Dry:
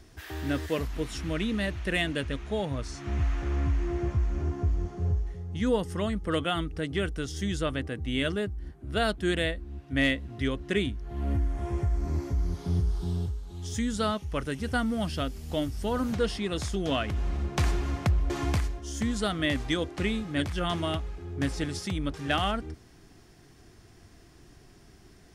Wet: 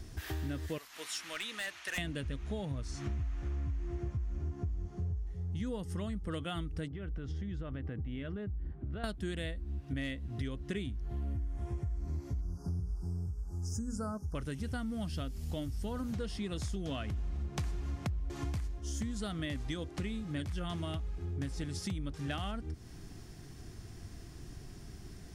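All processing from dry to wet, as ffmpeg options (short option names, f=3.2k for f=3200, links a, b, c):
-filter_complex "[0:a]asettb=1/sr,asplit=3[a][b][c];[a]atrim=end=0.784[d];[b]atrim=start=0.78:end=1.98,asetpts=PTS-STARTPTS,afade=t=in:d=0.004:c=qsin,afade=t=out:st=1.196:d=0.004:c=qsin,highpass=1.1k,volume=31dB,asoftclip=hard,volume=-31dB[e];[c]atrim=start=1.976[f];[d][e]acrossfade=d=0.004:c1=hsin:c2=qsin[g];[g][f]acrossfade=d=0.004:c1=qsin:c2=hsin,asettb=1/sr,asplit=3[h][i][j];[h]atrim=end=6.884[k];[i]atrim=start=6.88:end=9.04,asetpts=PTS-STARTPTS,afade=t=in:d=0.004:c=qsin,afade=t=out:st=2.156:d=0.004:c=qsin,lowpass=2.1k,acompressor=threshold=-38dB:ratio=8:attack=3.2:release=140:knee=1:detection=peak[l];[j]atrim=start=9.036[m];[k][l]acrossfade=d=0.004:c1=hsin:c2=qsin[n];[n][m]acrossfade=d=0.004:c1=qsin:c2=hsin,asettb=1/sr,asplit=3[o][p][q];[o]atrim=end=12.414[r];[p]atrim=start=12.41:end=14.35,asetpts=PTS-STARTPTS,afade=t=in:d=0.004:c=qsin,afade=t=out:st=1.936:d=0.004:c=qsin,asuperstop=centerf=2800:order=20:qfactor=0.88,bandreject=f=60:t=h:w=6,bandreject=f=120:t=h:w=6,bandreject=f=180:t=h:w=6,bandreject=f=240:t=h:w=6,bandreject=f=300:t=h:w=6,bandreject=f=360:t=h:w=6,bandreject=f=420:t=h:w=6,bandreject=f=480:t=h:w=6[s];[q]atrim=start=14.346[t];[r][s]acrossfade=d=0.004:c1=hsin:c2=qsin[u];[u][t]acrossfade=d=0.004:c1=qsin:c2=hsin,bass=f=250:g=8,treble=f=4k:g=4,acompressor=threshold=-35dB:ratio=6"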